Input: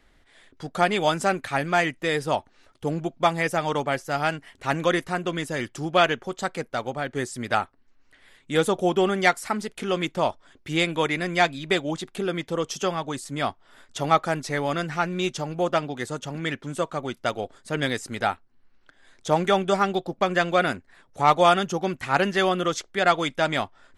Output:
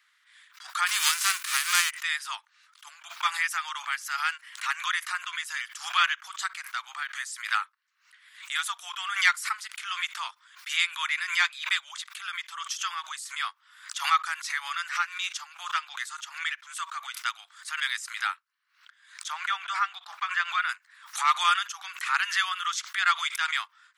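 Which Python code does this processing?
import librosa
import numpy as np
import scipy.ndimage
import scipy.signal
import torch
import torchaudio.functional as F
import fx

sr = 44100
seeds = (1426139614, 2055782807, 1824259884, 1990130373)

y = fx.envelope_flatten(x, sr, power=0.3, at=(0.86, 1.89), fade=0.02)
y = fx.lowpass(y, sr, hz=2400.0, slope=6, at=(19.32, 20.69))
y = scipy.signal.sosfilt(scipy.signal.butter(8, 1100.0, 'highpass', fs=sr, output='sos'), y)
y = fx.pre_swell(y, sr, db_per_s=120.0)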